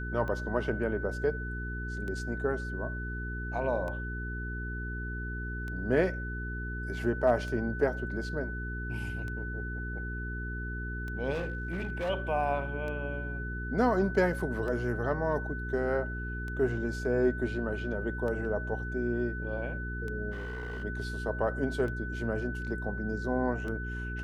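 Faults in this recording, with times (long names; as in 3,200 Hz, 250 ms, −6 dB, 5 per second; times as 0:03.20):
mains hum 60 Hz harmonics 7 −37 dBFS
scratch tick 33 1/3 rpm −27 dBFS
whistle 1,500 Hz −39 dBFS
0:11.33–0:12.10: clipping −29 dBFS
0:20.31–0:20.84: clipping −34 dBFS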